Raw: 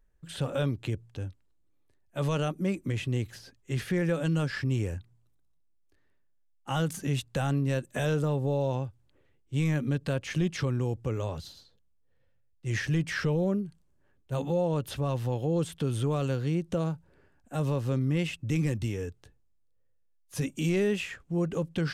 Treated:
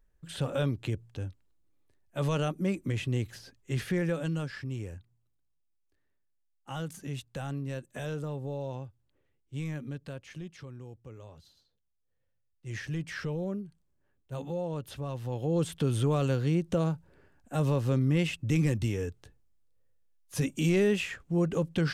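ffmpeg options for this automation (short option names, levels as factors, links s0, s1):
-af "volume=7.08,afade=t=out:st=3.85:d=0.73:silence=0.421697,afade=t=out:st=9.58:d=0.99:silence=0.398107,afade=t=in:st=11.36:d=1.72:silence=0.334965,afade=t=in:st=15.22:d=0.48:silence=0.398107"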